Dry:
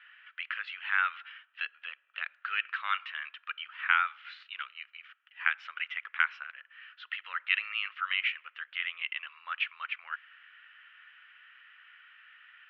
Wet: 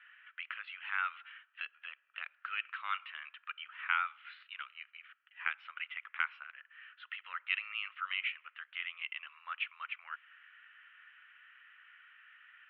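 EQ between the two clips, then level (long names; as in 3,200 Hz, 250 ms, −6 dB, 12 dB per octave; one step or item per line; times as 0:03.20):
high-pass filter 1,300 Hz 6 dB per octave
dynamic equaliser 1,700 Hz, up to −7 dB, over −47 dBFS, Q 2.8
high-frequency loss of the air 410 metres
+2.5 dB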